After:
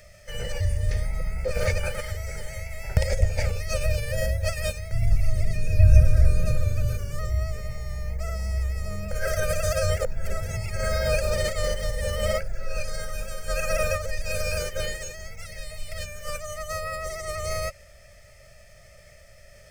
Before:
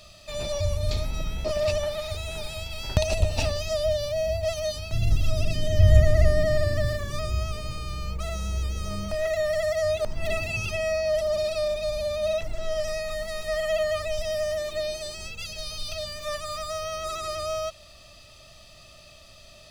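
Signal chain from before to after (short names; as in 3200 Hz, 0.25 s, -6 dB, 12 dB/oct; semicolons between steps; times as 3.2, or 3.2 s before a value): fixed phaser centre 1100 Hz, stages 6; formant shift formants -3 st; gain +2.5 dB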